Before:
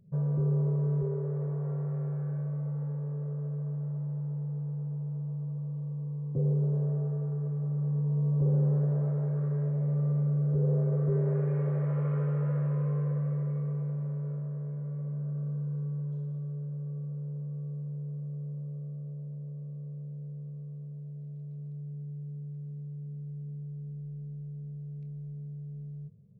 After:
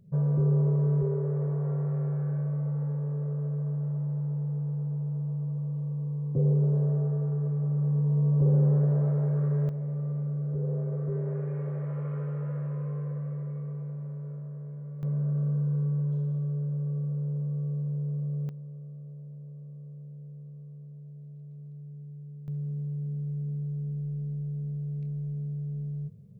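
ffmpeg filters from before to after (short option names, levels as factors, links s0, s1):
-af "asetnsamples=n=441:p=0,asendcmd='9.69 volume volume -3.5dB;15.03 volume volume 6dB;18.49 volume volume -3.5dB;22.48 volume volume 7dB',volume=1.5"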